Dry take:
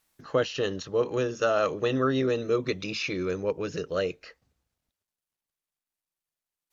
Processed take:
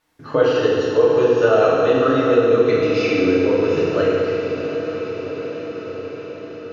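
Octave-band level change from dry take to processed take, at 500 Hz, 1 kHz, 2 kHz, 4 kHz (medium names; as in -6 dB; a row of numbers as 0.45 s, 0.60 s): +13.0 dB, +10.0 dB, +9.0 dB, +5.5 dB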